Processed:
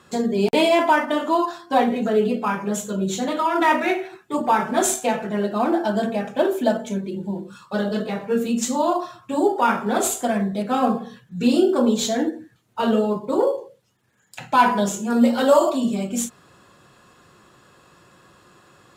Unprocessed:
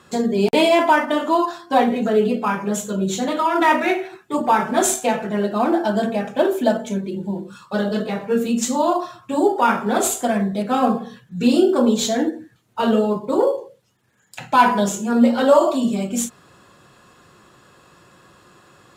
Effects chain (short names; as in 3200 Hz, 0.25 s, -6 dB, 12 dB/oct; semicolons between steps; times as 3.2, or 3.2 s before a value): 15.1–15.7 high shelf 5500 Hz +8.5 dB; gain -2 dB